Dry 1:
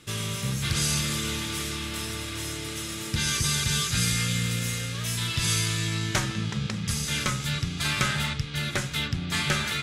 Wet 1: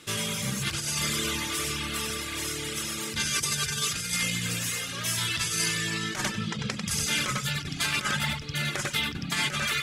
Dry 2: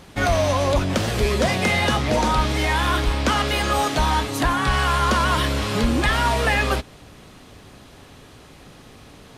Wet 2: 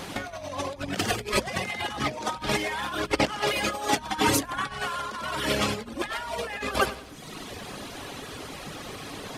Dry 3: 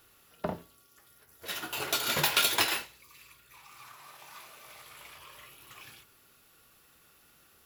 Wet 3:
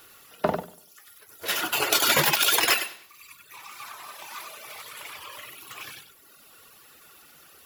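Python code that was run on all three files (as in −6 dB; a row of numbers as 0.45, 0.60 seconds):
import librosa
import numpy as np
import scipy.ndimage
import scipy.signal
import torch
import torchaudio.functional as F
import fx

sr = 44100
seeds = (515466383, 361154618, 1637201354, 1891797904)

y = fx.echo_feedback(x, sr, ms=96, feedback_pct=35, wet_db=-4.5)
y = fx.dereverb_blind(y, sr, rt60_s=0.95)
y = fx.over_compress(y, sr, threshold_db=-28.0, ratio=-0.5)
y = fx.low_shelf(y, sr, hz=140.0, db=-10.5)
y = fx.hum_notches(y, sr, base_hz=60, count=4)
y = fx.dynamic_eq(y, sr, hz=3900.0, q=7.6, threshold_db=-47.0, ratio=4.0, max_db=-5)
y = y * 10.0 ** (-30 / 20.0) / np.sqrt(np.mean(np.square(y)))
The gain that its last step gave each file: +2.5, +2.0, +9.5 decibels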